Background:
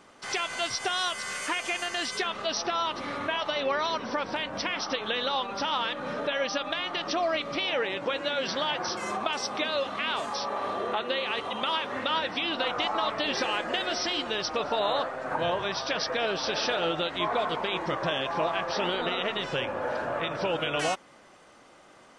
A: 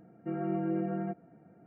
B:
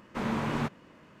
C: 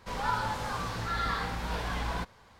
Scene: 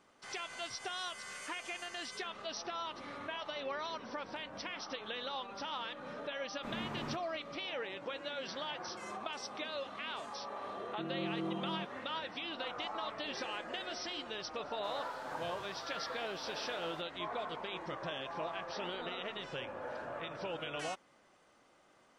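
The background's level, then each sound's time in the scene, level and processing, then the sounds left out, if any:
background -12 dB
6.48 s: add B -11.5 dB
10.72 s: add A -7 dB
14.77 s: add C -14 dB + steep high-pass 280 Hz

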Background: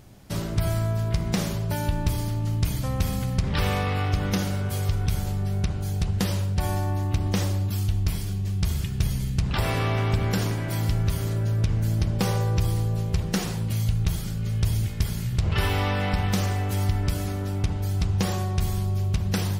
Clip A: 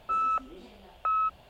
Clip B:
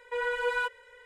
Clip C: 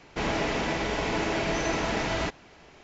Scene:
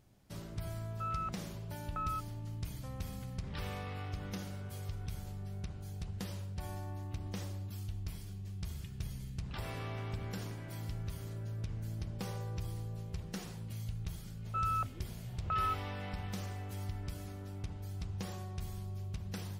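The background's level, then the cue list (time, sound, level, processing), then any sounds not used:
background -16.5 dB
0.91 s: add A -11.5 dB
14.45 s: add A -7 dB
not used: B, C

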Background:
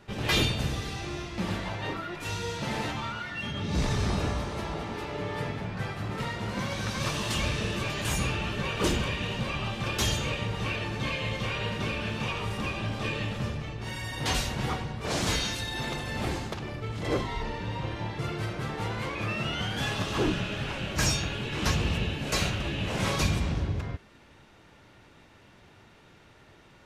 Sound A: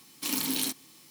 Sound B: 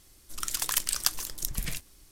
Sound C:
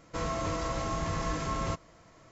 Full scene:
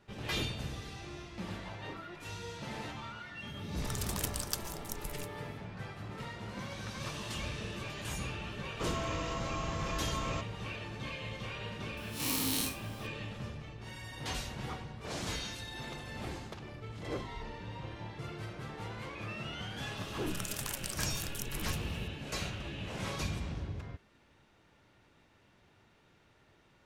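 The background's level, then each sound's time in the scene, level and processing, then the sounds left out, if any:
background -10 dB
3.47 s: add B -10 dB
8.66 s: add C -5 dB
11.97 s: add A -1 dB + spectral blur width 109 ms
19.97 s: add B -2.5 dB + compression 4:1, threshold -33 dBFS

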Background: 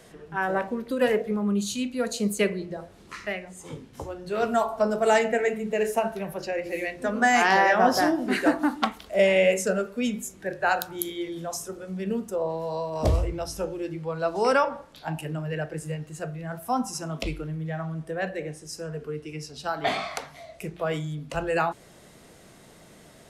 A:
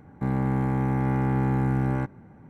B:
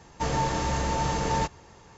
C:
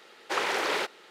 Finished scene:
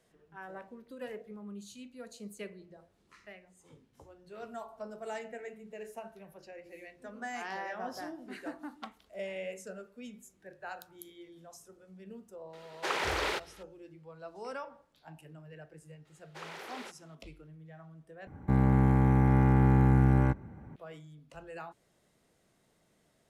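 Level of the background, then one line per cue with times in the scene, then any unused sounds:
background -19.5 dB
12.53 s: add C -4 dB
16.05 s: add C -17 dB
18.27 s: replace with A -1 dB + peaking EQ 60 Hz +10.5 dB 0.95 oct
not used: B

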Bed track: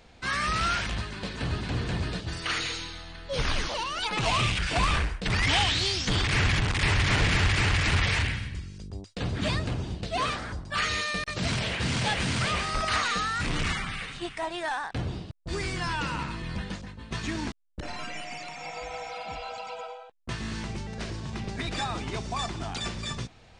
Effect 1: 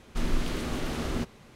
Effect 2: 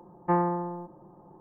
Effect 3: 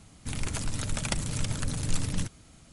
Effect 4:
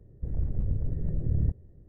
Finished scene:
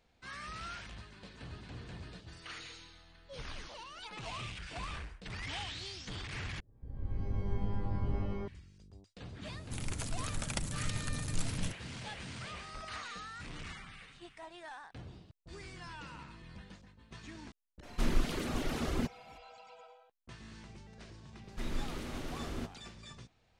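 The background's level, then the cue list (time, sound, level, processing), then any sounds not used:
bed track -17 dB
6.60 s: replace with 4 -15.5 dB + pitch-shifted reverb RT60 1.1 s, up +12 st, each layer -2 dB, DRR -2.5 dB
9.45 s: add 3 -6.5 dB
17.83 s: add 1 -1 dB + reverb removal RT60 0.89 s
21.42 s: add 1 -9.5 dB, fades 0.10 s
not used: 2

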